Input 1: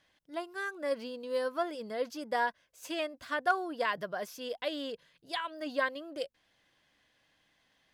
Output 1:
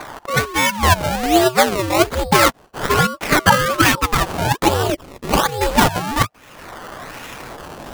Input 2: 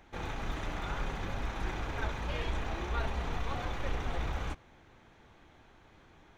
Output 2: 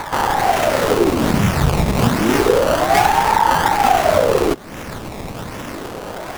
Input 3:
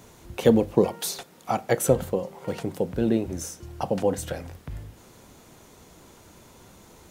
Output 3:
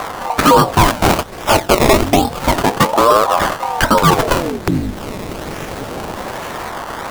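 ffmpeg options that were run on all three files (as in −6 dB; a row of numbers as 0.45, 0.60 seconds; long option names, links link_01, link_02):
-filter_complex "[0:a]lowpass=frequency=11000:width=0.5412,lowpass=frequency=11000:width=1.3066,adynamicequalizer=threshold=0.00316:dfrequency=4200:dqfactor=0.73:tfrequency=4200:tqfactor=0.73:attack=5:release=100:ratio=0.375:range=1.5:mode=boostabove:tftype=bell,asplit=2[link_01][link_02];[link_02]acompressor=threshold=-42dB:ratio=10,volume=1dB[link_03];[link_01][link_03]amix=inputs=2:normalize=0,apsyclip=21dB,acompressor=mode=upward:threshold=-15dB:ratio=2.5,acrusher=samples=20:mix=1:aa=0.000001:lfo=1:lforange=20:lforate=1.2,aeval=exprs='val(0)*sin(2*PI*500*n/s+500*0.8/0.29*sin(2*PI*0.29*n/s))':channel_layout=same,volume=-1.5dB"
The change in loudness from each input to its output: +18.5, +22.0, +12.0 LU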